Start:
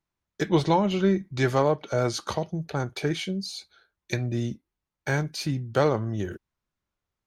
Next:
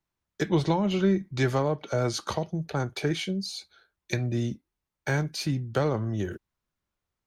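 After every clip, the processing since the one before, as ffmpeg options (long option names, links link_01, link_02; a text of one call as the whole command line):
ffmpeg -i in.wav -filter_complex "[0:a]acrossover=split=270[link_01][link_02];[link_02]acompressor=threshold=-24dB:ratio=6[link_03];[link_01][link_03]amix=inputs=2:normalize=0" out.wav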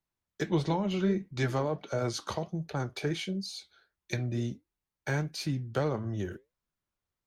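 ffmpeg -i in.wav -af "flanger=delay=4:depth=6.3:regen=-76:speed=1.5:shape=triangular" out.wav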